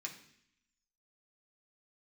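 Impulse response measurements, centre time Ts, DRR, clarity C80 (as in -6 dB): 16 ms, -1.5 dB, 12.5 dB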